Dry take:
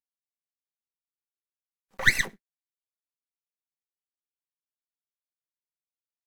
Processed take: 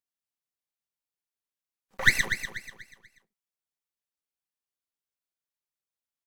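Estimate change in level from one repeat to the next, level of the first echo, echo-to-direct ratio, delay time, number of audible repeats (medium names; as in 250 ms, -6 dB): -9.0 dB, -9.5 dB, -9.0 dB, 243 ms, 3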